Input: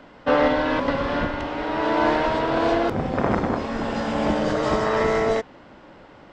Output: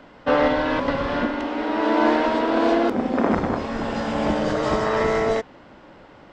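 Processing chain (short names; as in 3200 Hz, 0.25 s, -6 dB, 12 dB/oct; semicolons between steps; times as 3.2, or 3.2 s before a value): 1.21–3.34 resonant low shelf 180 Hz -8.5 dB, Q 3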